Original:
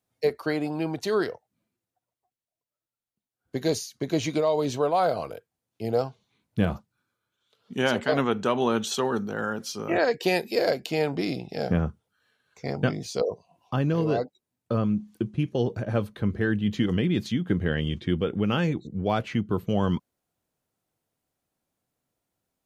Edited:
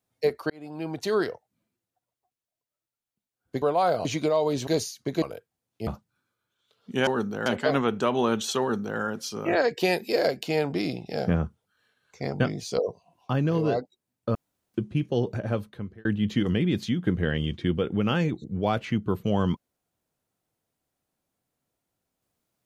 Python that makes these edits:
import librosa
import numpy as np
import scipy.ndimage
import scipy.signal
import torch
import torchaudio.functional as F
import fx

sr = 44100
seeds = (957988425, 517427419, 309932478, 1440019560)

y = fx.edit(x, sr, fx.fade_in_span(start_s=0.5, length_s=0.56),
    fx.swap(start_s=3.62, length_s=0.55, other_s=4.79, other_length_s=0.43),
    fx.cut(start_s=5.87, length_s=0.82),
    fx.duplicate(start_s=9.03, length_s=0.39, to_s=7.89),
    fx.room_tone_fill(start_s=14.78, length_s=0.39),
    fx.fade_out_span(start_s=15.83, length_s=0.65), tone=tone)